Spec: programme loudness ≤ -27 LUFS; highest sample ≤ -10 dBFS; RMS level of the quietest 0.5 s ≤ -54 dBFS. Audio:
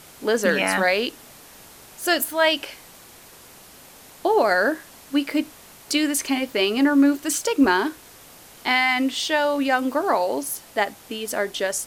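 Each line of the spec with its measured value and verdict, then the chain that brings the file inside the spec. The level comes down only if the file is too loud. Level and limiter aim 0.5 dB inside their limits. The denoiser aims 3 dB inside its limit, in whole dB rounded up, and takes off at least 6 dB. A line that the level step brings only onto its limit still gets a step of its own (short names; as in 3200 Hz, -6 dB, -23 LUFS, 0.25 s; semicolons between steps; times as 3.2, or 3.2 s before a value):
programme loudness -22.0 LUFS: fail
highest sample -6.5 dBFS: fail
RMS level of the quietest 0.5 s -47 dBFS: fail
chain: denoiser 6 dB, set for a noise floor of -47 dBFS; gain -5.5 dB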